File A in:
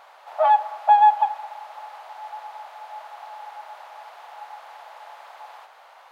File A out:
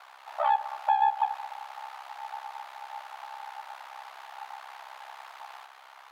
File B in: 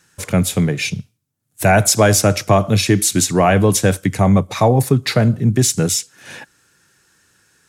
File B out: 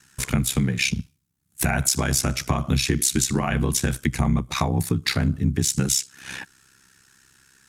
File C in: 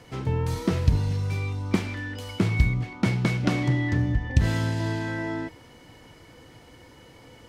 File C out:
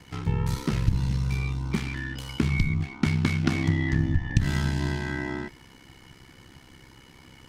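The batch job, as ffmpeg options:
ffmpeg -i in.wav -af "acompressor=threshold=-18dB:ratio=6,equalizer=frequency=550:width=1.7:gain=-12.5,aeval=exprs='val(0)*sin(2*PI*33*n/s)':channel_layout=same,volume=4dB" out.wav

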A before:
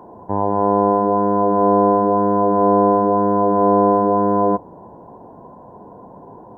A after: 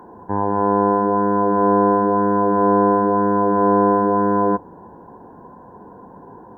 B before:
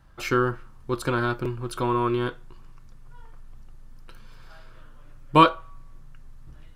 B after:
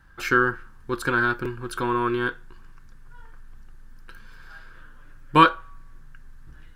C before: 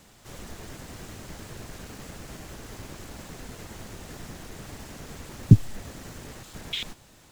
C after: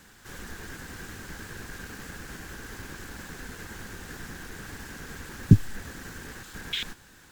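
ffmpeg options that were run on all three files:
ffmpeg -i in.wav -af "equalizer=frequency=125:width_type=o:width=0.33:gain=-5,equalizer=frequency=630:width_type=o:width=0.33:gain=-9,equalizer=frequency=1600:width_type=o:width=0.33:gain=12,equalizer=frequency=16000:width_type=o:width=0.33:gain=5" out.wav

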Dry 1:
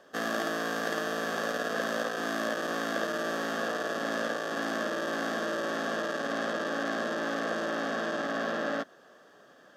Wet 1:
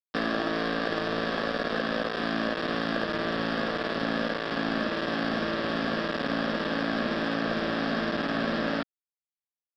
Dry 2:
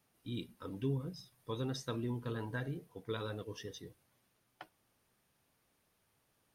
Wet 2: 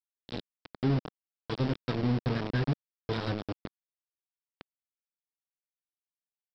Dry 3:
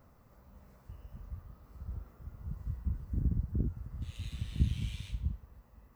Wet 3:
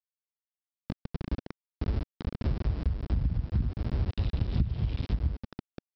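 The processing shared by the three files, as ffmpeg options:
ffmpeg -i in.wav -af "asubboost=boost=6:cutoff=130,aresample=11025,aeval=exprs='val(0)*gte(abs(val(0)),0.0211)':channel_layout=same,aresample=44100,acompressor=threshold=-29dB:ratio=16,aeval=exprs='0.112*(cos(1*acos(clip(val(0)/0.112,-1,1)))-cos(1*PI/2))+0.00224*(cos(8*acos(clip(val(0)/0.112,-1,1)))-cos(8*PI/2))':channel_layout=same,equalizer=frequency=240:width_type=o:width=2.1:gain=7,volume=3.5dB" out.wav

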